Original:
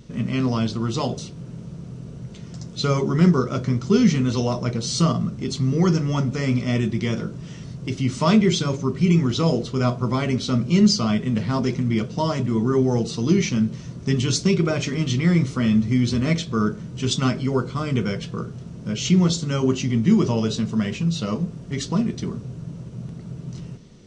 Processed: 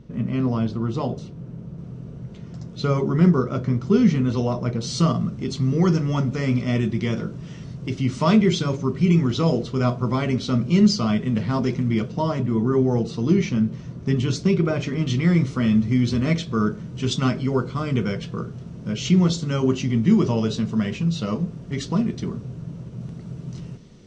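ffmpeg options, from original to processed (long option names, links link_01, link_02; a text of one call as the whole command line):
ffmpeg -i in.wav -af "asetnsamples=nb_out_samples=441:pad=0,asendcmd='1.78 lowpass f 1800;4.81 lowpass f 4100;12.12 lowpass f 2000;15.07 lowpass f 4300;23.01 lowpass f 7500',lowpass=frequency=1100:poles=1" out.wav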